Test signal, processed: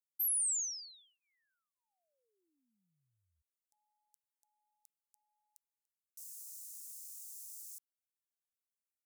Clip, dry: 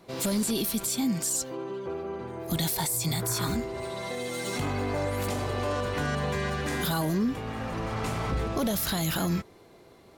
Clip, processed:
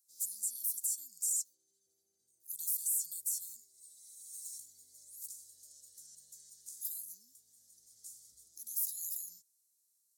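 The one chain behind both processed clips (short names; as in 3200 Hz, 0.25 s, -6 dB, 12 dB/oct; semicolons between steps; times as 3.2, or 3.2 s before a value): inverse Chebyshev high-pass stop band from 2800 Hz, stop band 50 dB; gain -2.5 dB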